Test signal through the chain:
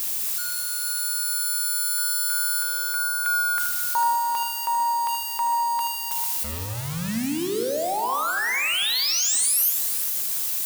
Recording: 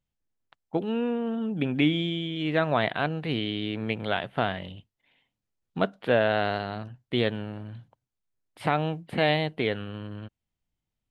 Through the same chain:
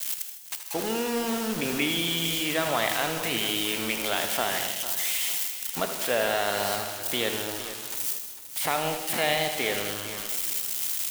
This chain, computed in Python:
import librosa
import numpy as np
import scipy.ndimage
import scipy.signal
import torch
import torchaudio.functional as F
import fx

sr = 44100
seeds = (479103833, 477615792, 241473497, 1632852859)

p1 = x + 0.5 * 10.0 ** (-26.5 / 20.0) * np.diff(np.sign(x), prepend=np.sign(x[:1]))
p2 = fx.highpass(p1, sr, hz=820.0, slope=6)
p3 = fx.dynamic_eq(p2, sr, hz=1500.0, q=6.3, threshold_db=-47.0, ratio=4.0, max_db=-4)
p4 = fx.over_compress(p3, sr, threshold_db=-37.0, ratio=-1.0)
p5 = p3 + F.gain(torch.from_numpy(p4), 0.0).numpy()
p6 = fx.quant_dither(p5, sr, seeds[0], bits=6, dither='none')
p7 = fx.echo_feedback(p6, sr, ms=78, feedback_pct=43, wet_db=-10.0)
p8 = fx.rev_gated(p7, sr, seeds[1], gate_ms=260, shape='flat', drr_db=8.0)
y = fx.echo_crushed(p8, sr, ms=450, feedback_pct=35, bits=7, wet_db=-12.0)